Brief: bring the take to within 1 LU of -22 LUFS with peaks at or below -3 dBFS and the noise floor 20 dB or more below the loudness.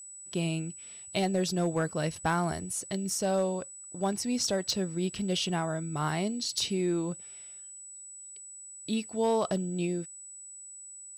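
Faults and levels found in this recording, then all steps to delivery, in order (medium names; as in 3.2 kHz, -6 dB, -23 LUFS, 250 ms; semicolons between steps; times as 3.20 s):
clipped samples 0.2%; clipping level -20.0 dBFS; steady tone 7.9 kHz; tone level -44 dBFS; loudness -31.0 LUFS; peak level -20.0 dBFS; loudness target -22.0 LUFS
-> clip repair -20 dBFS; band-stop 7.9 kHz, Q 30; trim +9 dB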